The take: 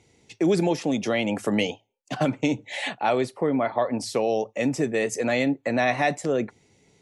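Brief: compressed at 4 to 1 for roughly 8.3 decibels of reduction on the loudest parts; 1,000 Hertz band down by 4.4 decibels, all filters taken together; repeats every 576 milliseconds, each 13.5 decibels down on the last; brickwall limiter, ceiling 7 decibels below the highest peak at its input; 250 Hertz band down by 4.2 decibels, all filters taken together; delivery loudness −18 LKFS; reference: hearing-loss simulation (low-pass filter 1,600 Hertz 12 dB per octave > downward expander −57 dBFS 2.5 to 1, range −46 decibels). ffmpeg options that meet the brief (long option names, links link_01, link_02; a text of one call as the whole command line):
ffmpeg -i in.wav -af "equalizer=frequency=250:width_type=o:gain=-5,equalizer=frequency=1000:width_type=o:gain=-6,acompressor=threshold=-31dB:ratio=4,alimiter=level_in=2dB:limit=-24dB:level=0:latency=1,volume=-2dB,lowpass=1600,aecho=1:1:576|1152:0.211|0.0444,agate=range=-46dB:threshold=-57dB:ratio=2.5,volume=19.5dB" out.wav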